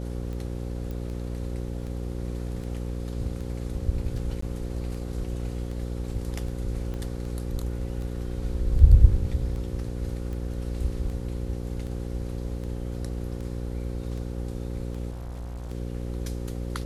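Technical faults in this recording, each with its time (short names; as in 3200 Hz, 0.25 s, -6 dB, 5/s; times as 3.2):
buzz 60 Hz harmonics 9 -32 dBFS
tick 78 rpm -27 dBFS
0.91 pop
4.41–4.42 gap 14 ms
6.94 pop -24 dBFS
15.1–15.72 clipped -32.5 dBFS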